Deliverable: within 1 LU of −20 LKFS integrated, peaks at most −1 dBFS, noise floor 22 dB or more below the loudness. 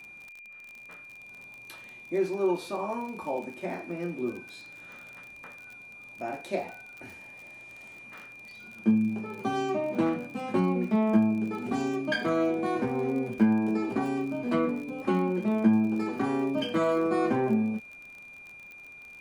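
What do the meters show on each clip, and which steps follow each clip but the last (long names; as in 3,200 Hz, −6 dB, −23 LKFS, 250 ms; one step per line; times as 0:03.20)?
crackle rate 39 per second; interfering tone 2,400 Hz; level of the tone −45 dBFS; integrated loudness −28.5 LKFS; sample peak −11.0 dBFS; target loudness −20.0 LKFS
→ click removal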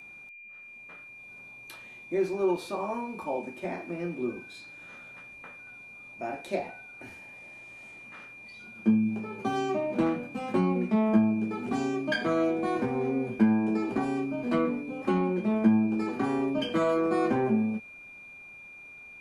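crackle rate 0.10 per second; interfering tone 2,400 Hz; level of the tone −45 dBFS
→ notch filter 2,400 Hz, Q 30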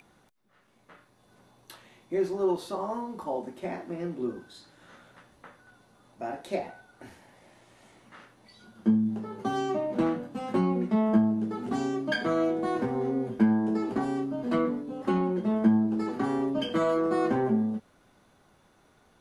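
interfering tone none found; integrated loudness −28.5 LKFS; sample peak −11.0 dBFS; target loudness −20.0 LKFS
→ level +8.5 dB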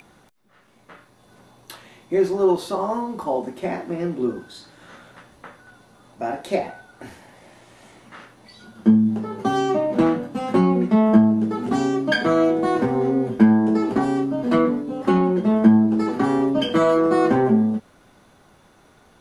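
integrated loudness −20.0 LKFS; sample peak −2.5 dBFS; background noise floor −55 dBFS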